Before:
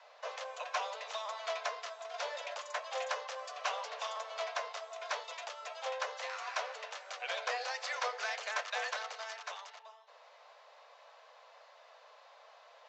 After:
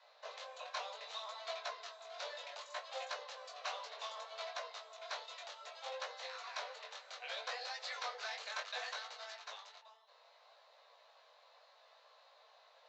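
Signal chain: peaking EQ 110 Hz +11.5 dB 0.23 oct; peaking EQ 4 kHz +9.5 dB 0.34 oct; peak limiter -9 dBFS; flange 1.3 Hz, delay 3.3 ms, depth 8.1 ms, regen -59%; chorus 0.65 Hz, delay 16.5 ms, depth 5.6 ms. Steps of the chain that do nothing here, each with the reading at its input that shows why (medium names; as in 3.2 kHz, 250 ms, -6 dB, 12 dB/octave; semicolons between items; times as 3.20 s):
peaking EQ 110 Hz: input has nothing below 400 Hz; peak limiter -9 dBFS: peak at its input -19.5 dBFS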